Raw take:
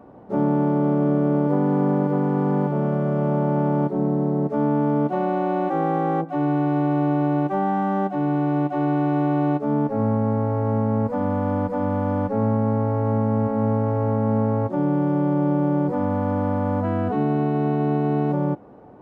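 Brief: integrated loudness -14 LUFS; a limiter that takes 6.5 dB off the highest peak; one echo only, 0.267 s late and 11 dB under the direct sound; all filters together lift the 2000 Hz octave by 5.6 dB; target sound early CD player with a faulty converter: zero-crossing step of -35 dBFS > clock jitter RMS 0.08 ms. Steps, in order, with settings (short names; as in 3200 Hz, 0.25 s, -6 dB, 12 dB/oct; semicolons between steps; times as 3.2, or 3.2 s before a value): bell 2000 Hz +8.5 dB; limiter -15 dBFS; echo 0.267 s -11 dB; zero-crossing step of -35 dBFS; clock jitter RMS 0.08 ms; gain +7.5 dB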